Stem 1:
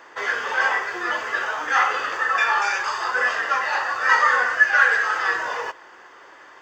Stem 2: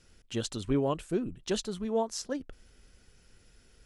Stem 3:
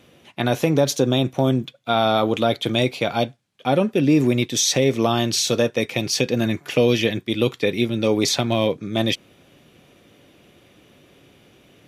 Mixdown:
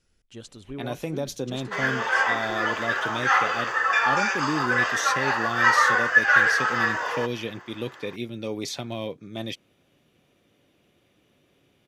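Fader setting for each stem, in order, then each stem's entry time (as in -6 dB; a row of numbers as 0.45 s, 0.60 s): -1.5 dB, -9.0 dB, -12.0 dB; 1.55 s, 0.00 s, 0.40 s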